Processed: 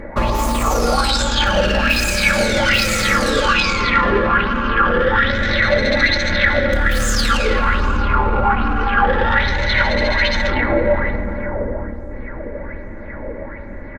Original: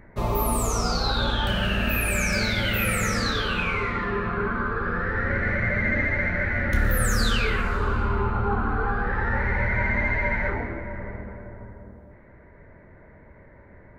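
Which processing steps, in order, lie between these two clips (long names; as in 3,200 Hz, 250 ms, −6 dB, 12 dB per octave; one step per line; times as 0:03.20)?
phase distortion by the signal itself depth 0.22 ms
in parallel at +2.5 dB: downward compressor, threshold −33 dBFS, peak gain reduction 15 dB
on the sum: high-shelf EQ 10,000 Hz −9 dB
notch filter 5,600 Hz, Q 26
comb filter 3.6 ms, depth 59%
on a send: bucket-brigade delay 540 ms, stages 2,048, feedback 82%, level −13.5 dB
on the sum: boost into a limiter +15 dB
auto-filter bell 1.2 Hz 450–7,200 Hz +12 dB
level −8.5 dB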